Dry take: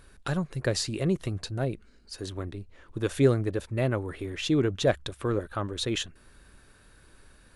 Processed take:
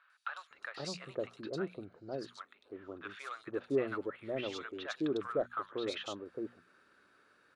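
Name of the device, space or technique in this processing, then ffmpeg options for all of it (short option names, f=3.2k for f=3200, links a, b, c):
intercom: -filter_complex "[0:a]highpass=300,lowpass=4.3k,equalizer=f=1.3k:t=o:w=0.35:g=8.5,bandreject=f=60:t=h:w=6,bandreject=f=120:t=h:w=6,bandreject=f=180:t=h:w=6,bandreject=f=240:t=h:w=6,asoftclip=type=tanh:threshold=-13.5dB,acrossover=split=910|3500[a][b][c];[c]adelay=100[d];[a]adelay=510[e];[e][b][d]amix=inputs=3:normalize=0,volume=-6dB"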